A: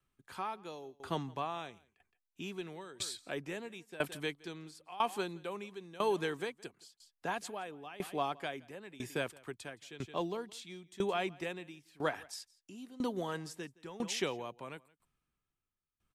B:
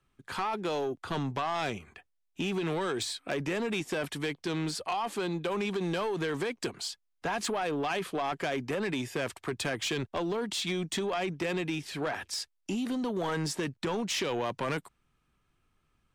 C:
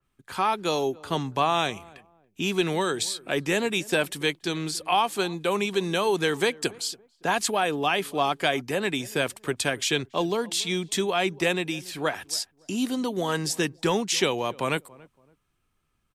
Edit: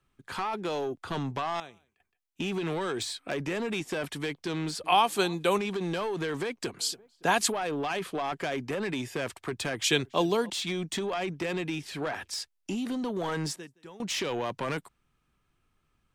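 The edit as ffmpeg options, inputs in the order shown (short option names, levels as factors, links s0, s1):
-filter_complex "[0:a]asplit=2[s0][s1];[2:a]asplit=3[s2][s3][s4];[1:a]asplit=6[s5][s6][s7][s8][s9][s10];[s5]atrim=end=1.602[s11];[s0]atrim=start=1.598:end=2.402[s12];[s6]atrim=start=2.398:end=4.842[s13];[s2]atrim=start=4.838:end=5.582[s14];[s7]atrim=start=5.578:end=6.792[s15];[s3]atrim=start=6.788:end=7.522[s16];[s8]atrim=start=7.518:end=9.842[s17];[s4]atrim=start=9.838:end=10.502[s18];[s9]atrim=start=10.498:end=13.562[s19];[s1]atrim=start=13.558:end=14.022[s20];[s10]atrim=start=14.018[s21];[s11][s12]acrossfade=d=0.004:c1=hsin:c2=hsin[s22];[s22][s13]acrossfade=d=0.004:c1=hsin:c2=hsin[s23];[s23][s14]acrossfade=d=0.004:c1=hsin:c2=hsin[s24];[s24][s15]acrossfade=d=0.004:c1=hsin:c2=hsin[s25];[s25][s16]acrossfade=d=0.004:c1=hsin:c2=hsin[s26];[s26][s17]acrossfade=d=0.004:c1=hsin:c2=hsin[s27];[s27][s18]acrossfade=d=0.004:c1=hsin:c2=hsin[s28];[s28][s19]acrossfade=d=0.004:c1=hsin:c2=hsin[s29];[s29][s20]acrossfade=d=0.004:c1=hsin:c2=hsin[s30];[s30][s21]acrossfade=d=0.004:c1=hsin:c2=hsin"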